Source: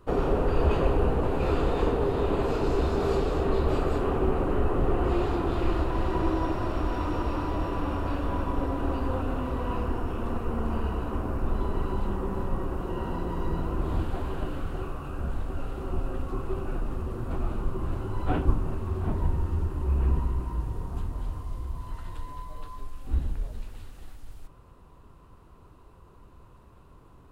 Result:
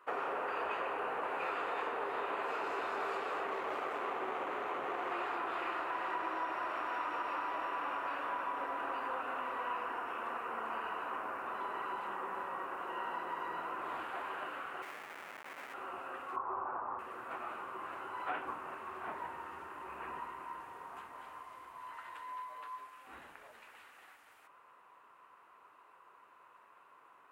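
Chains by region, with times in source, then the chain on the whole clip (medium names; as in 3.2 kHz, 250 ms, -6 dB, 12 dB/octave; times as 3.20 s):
3.46–5.12 s: median filter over 25 samples + high-pass 72 Hz
14.82–15.74 s: high-pass 160 Hz + treble shelf 2.2 kHz -10.5 dB + Schmitt trigger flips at -41 dBFS
16.36–16.99 s: resonant low-pass 990 Hz, resonance Q 3.4 + peaking EQ 88 Hz +12.5 dB 0.76 oct
whole clip: high-pass 1 kHz 12 dB/octave; resonant high shelf 3 kHz -10 dB, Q 1.5; compression, threshold -36 dBFS; trim +2.5 dB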